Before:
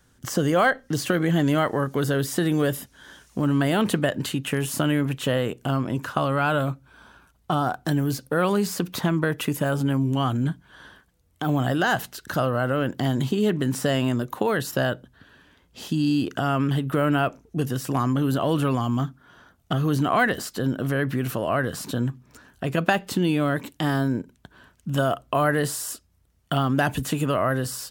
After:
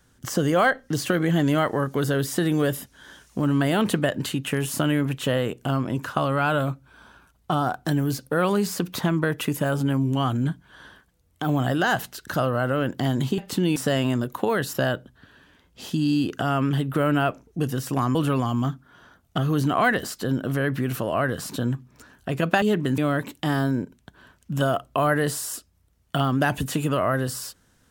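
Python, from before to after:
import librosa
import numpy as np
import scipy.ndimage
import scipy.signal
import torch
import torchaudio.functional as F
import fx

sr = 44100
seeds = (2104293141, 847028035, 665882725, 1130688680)

y = fx.edit(x, sr, fx.swap(start_s=13.38, length_s=0.36, other_s=22.97, other_length_s=0.38),
    fx.cut(start_s=18.13, length_s=0.37), tone=tone)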